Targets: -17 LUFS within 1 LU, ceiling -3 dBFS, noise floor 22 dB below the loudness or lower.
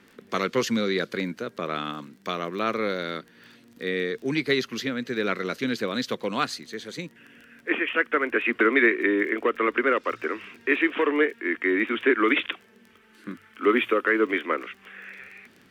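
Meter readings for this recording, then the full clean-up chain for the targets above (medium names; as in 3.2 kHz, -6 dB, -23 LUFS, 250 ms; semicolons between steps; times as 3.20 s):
tick rate 21 per s; loudness -25.5 LUFS; peak level -7.0 dBFS; loudness target -17.0 LUFS
-> de-click; trim +8.5 dB; peak limiter -3 dBFS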